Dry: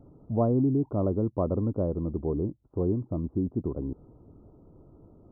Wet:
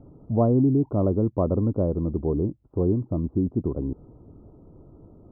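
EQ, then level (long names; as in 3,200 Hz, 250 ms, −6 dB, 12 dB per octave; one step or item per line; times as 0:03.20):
high-frequency loss of the air 450 metres
+5.0 dB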